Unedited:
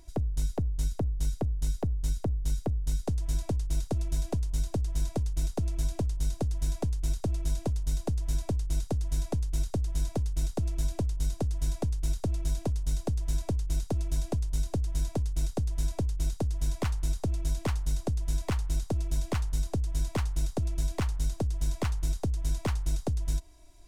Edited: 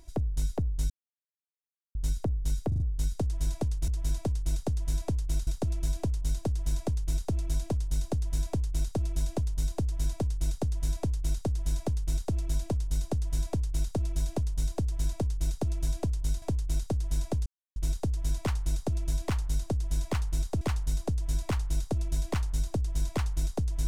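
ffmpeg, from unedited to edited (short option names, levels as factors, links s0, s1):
-filter_complex "[0:a]asplit=11[s0][s1][s2][s3][s4][s5][s6][s7][s8][s9][s10];[s0]atrim=end=0.9,asetpts=PTS-STARTPTS,afade=t=out:st=0.896:d=0.004:c=hsin[s11];[s1]atrim=start=0.9:end=1.95,asetpts=PTS-STARTPTS,volume=0[s12];[s2]atrim=start=1.95:end=2.722,asetpts=PTS-STARTPTS,afade=t=in:d=0.004:c=hsin[s13];[s3]atrim=start=2.678:end=2.722[s14];[s4]atrim=start=2.678:end=2.722[s15];[s5]atrim=start=2.678:end=3.762[s16];[s6]atrim=start=8.118:end=9.712[s17];[s7]atrim=start=3.758:end=14.712[s18];[s8]atrim=start=15.088:end=16.13,asetpts=PTS-STARTPTS,afade=t=out:st=1.038:d=0.004:c=hsin,apad=pad_dur=0.3[s19];[s9]atrim=start=16.13:end=18.982,asetpts=PTS-STARTPTS,afade=t=in:d=0.004:c=hsin[s20];[s10]atrim=start=19.268[s21];[s11][s12][s13]concat=n=3:v=0:a=1[s22];[s22][s14]acrossfade=d=0.004:c1=hsin:c2=hsin[s23];[s23][s15]acrossfade=d=0.004:c1=hsin:c2=hsin[s24];[s24][s16]acrossfade=d=0.004:c1=hsin:c2=hsin[s25];[s25][s17]acrossfade=d=0.004:c1=hsin:c2=hsin[s26];[s26][s18]acrossfade=d=0.004:c1=hsin:c2=hsin[s27];[s19][s20]concat=n=2:v=0:a=1[s28];[s27][s28]acrossfade=d=0.004:c1=hsin:c2=hsin[s29];[s29][s21]acrossfade=d=0.004:c1=hsin:c2=hsin"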